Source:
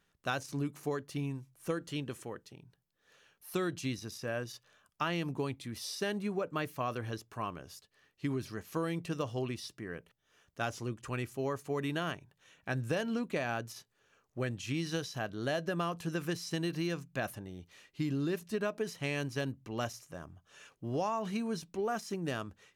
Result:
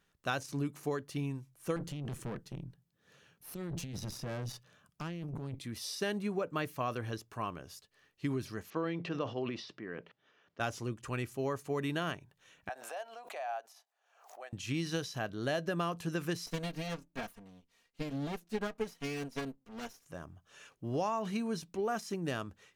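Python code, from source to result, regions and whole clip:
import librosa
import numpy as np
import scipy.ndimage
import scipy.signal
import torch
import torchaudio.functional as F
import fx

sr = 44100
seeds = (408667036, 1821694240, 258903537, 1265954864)

y = fx.chain(x, sr, fx.peak_eq(hz=150.0, db=13.5, octaves=1.7),
    fx.over_compress(threshold_db=-33.0, ratio=-1.0),
    fx.tube_stage(drive_db=35.0, bias=0.8), at=(1.76, 5.59))
y = fx.chain(y, sr, fx.transient(attack_db=0, sustain_db=9),
    fx.bandpass_edges(low_hz=190.0, high_hz=5000.0),
    fx.air_absorb(metres=130.0), at=(8.7, 10.6))
y = fx.chain(y, sr, fx.ladder_highpass(hz=670.0, resonance_pct=75),
    fx.pre_swell(db_per_s=82.0), at=(12.69, 14.53))
y = fx.chain(y, sr, fx.lower_of_two(delay_ms=4.3),
    fx.upward_expand(threshold_db=-53.0, expansion=1.5), at=(16.46, 20.06))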